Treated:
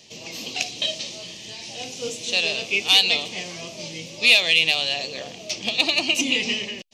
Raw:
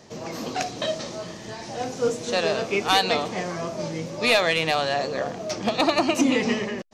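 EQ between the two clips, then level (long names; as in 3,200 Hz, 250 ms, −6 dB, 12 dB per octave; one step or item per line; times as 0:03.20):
high shelf with overshoot 2,000 Hz +11 dB, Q 3
−7.5 dB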